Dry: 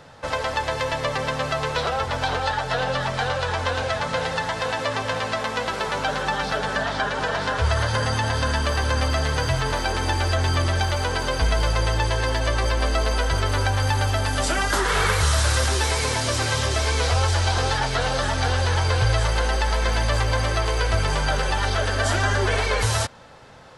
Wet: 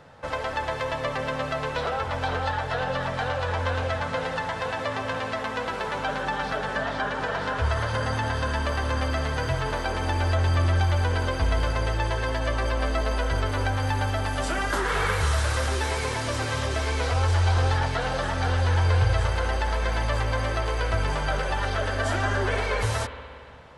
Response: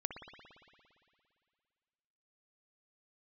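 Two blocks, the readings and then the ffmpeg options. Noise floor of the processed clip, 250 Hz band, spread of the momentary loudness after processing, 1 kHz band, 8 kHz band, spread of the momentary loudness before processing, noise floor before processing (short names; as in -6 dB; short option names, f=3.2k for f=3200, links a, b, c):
-33 dBFS, -2.0 dB, 6 LU, -3.5 dB, -9.5 dB, 4 LU, -30 dBFS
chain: -filter_complex "[0:a]asplit=2[a][b];[1:a]atrim=start_sample=2205,lowpass=3.4k[c];[b][c]afir=irnorm=-1:irlink=0,volume=0dB[d];[a][d]amix=inputs=2:normalize=0,volume=-8.5dB"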